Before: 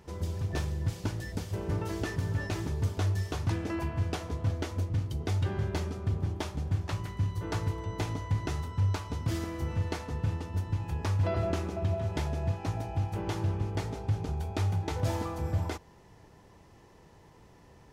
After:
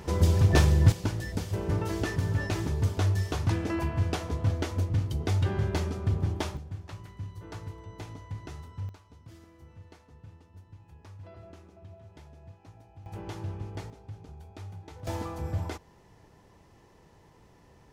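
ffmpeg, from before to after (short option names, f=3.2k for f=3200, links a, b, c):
-af "asetnsamples=n=441:p=0,asendcmd='0.92 volume volume 3dB;6.57 volume volume -9dB;8.89 volume volume -19dB;13.06 volume volume -6dB;13.9 volume volume -13.5dB;15.07 volume volume -1.5dB',volume=11.5dB"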